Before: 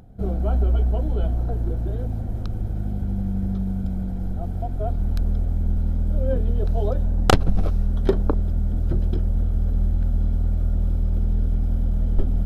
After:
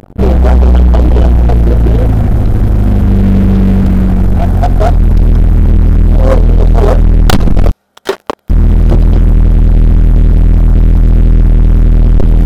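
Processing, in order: 7.71–8.50 s: high-pass 830 Hz 12 dB/octave; waveshaping leveller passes 5; trim +3 dB

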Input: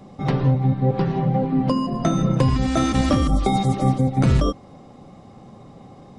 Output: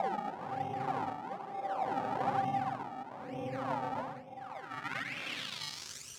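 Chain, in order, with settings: Paulstretch 8.2×, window 0.05 s, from 3.59 s; decimation with a swept rate 29×, swing 100% 1.1 Hz; band-pass sweep 850 Hz -> 6.8 kHz, 4.34–6.01 s; trim -5.5 dB

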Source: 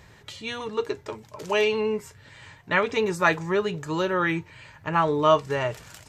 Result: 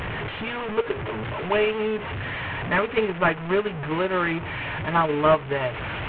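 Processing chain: one-bit delta coder 16 kbps, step -23.5 dBFS; transient shaper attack +4 dB, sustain -6 dB; tape noise reduction on one side only decoder only

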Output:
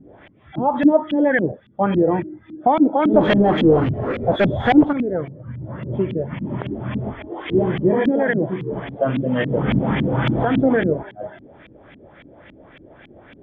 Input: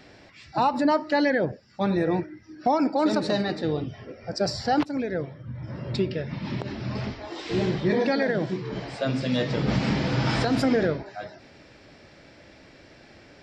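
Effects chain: knee-point frequency compression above 3 kHz 4:1; 3.14–4.93 s: power-law waveshaper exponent 0.5; LFO low-pass saw up 3.6 Hz 210–2700 Hz; trim +3.5 dB

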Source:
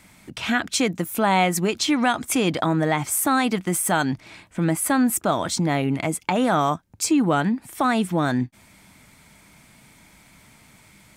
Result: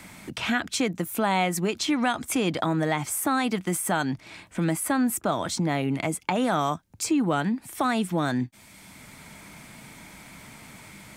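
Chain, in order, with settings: three bands compressed up and down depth 40%; trim -4 dB

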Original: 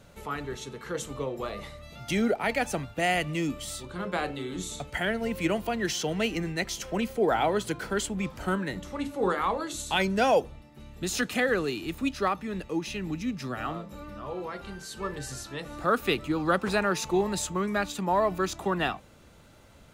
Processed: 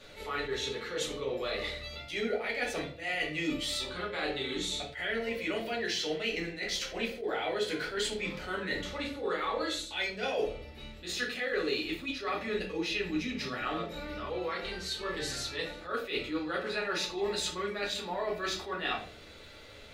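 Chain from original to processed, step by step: graphic EQ 500/2000/4000 Hz +7/+10/+12 dB; reverse; compression 6:1, threshold -29 dBFS, peak gain reduction 16.5 dB; reverse; peaking EQ 140 Hz -8 dB 1 oct; reverberation RT60 0.45 s, pre-delay 3 ms, DRR -4 dB; attacks held to a fixed rise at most 150 dB/s; trim -7 dB

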